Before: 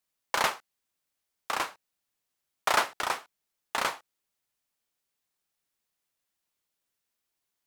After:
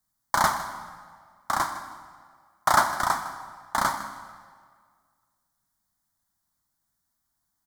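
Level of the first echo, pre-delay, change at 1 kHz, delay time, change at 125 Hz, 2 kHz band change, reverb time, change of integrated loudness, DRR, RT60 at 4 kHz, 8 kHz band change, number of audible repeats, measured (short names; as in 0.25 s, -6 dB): -15.0 dB, 29 ms, +7.0 dB, 0.157 s, +13.0 dB, +2.5 dB, 1.8 s, +4.0 dB, 8.0 dB, 1.4 s, +4.5 dB, 1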